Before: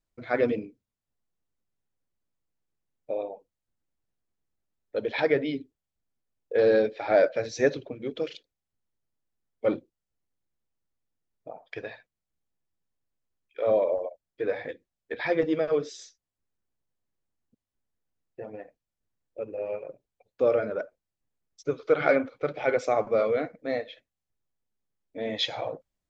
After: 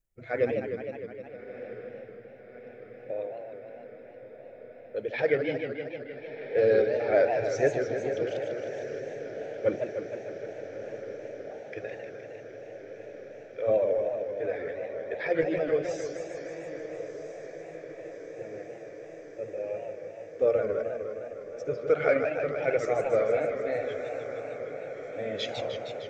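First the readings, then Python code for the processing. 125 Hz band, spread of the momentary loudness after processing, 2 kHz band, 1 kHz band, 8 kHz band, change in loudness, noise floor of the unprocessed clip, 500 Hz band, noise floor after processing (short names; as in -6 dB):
+1.5 dB, 18 LU, -1.0 dB, -2.5 dB, n/a, -3.0 dB, under -85 dBFS, 0.0 dB, -47 dBFS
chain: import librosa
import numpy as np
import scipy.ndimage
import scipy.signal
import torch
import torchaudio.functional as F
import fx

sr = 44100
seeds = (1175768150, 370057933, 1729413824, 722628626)

p1 = fx.spec_quant(x, sr, step_db=15)
p2 = fx.graphic_eq(p1, sr, hz=(250, 1000, 4000), db=(-10, -12, -12))
p3 = fx.level_steps(p2, sr, step_db=14)
p4 = p2 + F.gain(torch.from_numpy(p3), -2.0).numpy()
p5 = fx.echo_diffused(p4, sr, ms=1286, feedback_pct=71, wet_db=-12.0)
y = fx.echo_warbled(p5, sr, ms=154, feedback_pct=74, rate_hz=2.8, cents=218, wet_db=-7)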